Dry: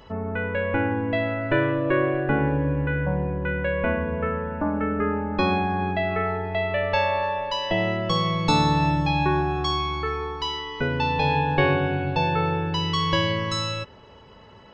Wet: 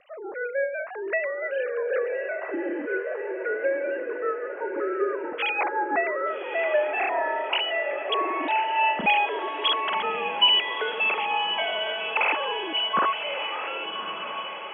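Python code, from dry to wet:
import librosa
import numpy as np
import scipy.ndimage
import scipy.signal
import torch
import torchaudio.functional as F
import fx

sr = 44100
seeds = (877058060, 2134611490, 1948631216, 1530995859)

y = fx.sine_speech(x, sr)
y = fx.rotary_switch(y, sr, hz=6.0, then_hz=0.6, switch_at_s=6.25)
y = fx.echo_diffused(y, sr, ms=1189, feedback_pct=59, wet_db=-8.0)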